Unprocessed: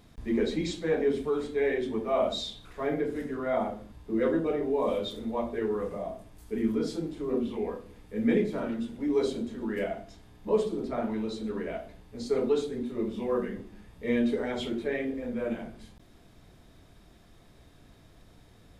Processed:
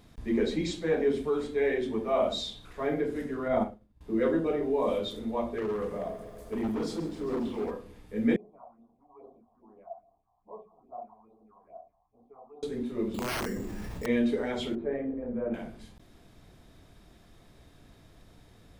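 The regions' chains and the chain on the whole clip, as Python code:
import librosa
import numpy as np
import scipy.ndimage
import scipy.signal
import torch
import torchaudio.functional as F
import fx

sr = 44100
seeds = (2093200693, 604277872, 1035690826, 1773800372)

y = fx.chain(x, sr, fx.low_shelf(hz=340.0, db=9.5),
    fx.upward_expand(threshold_db=-40.0, expansion=2.5), at=(3.48, 4.01))
y = fx.chain(y, sr, fx.clip_hard(threshold_db=-27.5),
    fx.echo_crushed(ms=134, feedback_pct=80, bits=10, wet_db=-14.5), at=(5.55, 7.71))
y = fx.chain(y, sr, fx.phaser_stages(stages=4, low_hz=310.0, high_hz=2700.0, hz=2.4, feedback_pct=25),
    fx.formant_cascade(vowel='a'), at=(8.36, 12.63))
y = fx.chain(y, sr, fx.overflow_wrap(gain_db=26.5),
    fx.resample_bad(factor=6, down='filtered', up='hold'),
    fx.env_flatten(amount_pct=70), at=(13.14, 14.06))
y = fx.chain(y, sr, fx.lowpass(hz=1000.0, slope=12),
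    fx.hum_notches(base_hz=50, count=8), at=(14.75, 15.54))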